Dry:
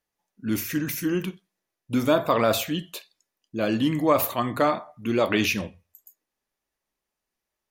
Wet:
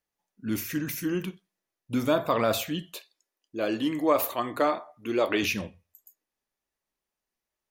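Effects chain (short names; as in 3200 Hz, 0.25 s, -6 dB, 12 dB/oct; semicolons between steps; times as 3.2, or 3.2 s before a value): 2.96–5.43 resonant low shelf 250 Hz -7.5 dB, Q 1.5; gain -3.5 dB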